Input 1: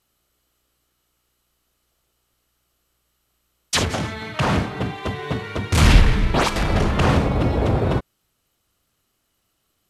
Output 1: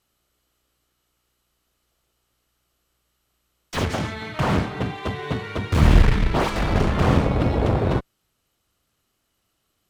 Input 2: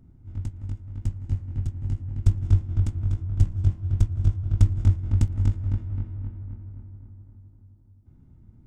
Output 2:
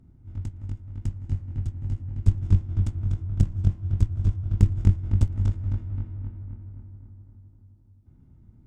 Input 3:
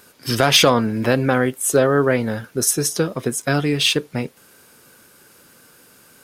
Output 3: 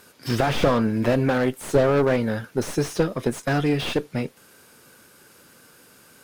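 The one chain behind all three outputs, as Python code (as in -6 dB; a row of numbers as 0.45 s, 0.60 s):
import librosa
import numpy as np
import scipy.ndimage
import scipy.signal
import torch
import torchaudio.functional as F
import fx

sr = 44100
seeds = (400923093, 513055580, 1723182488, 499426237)

y = fx.high_shelf(x, sr, hz=9700.0, db=-4.0)
y = fx.cheby_harmonics(y, sr, harmonics=(6, 8), levels_db=(-12, -19), full_scale_db=-1.0)
y = fx.slew_limit(y, sr, full_power_hz=130.0)
y = F.gain(torch.from_numpy(y), -1.0).numpy()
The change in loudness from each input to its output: -1.5 LU, -0.5 LU, -4.5 LU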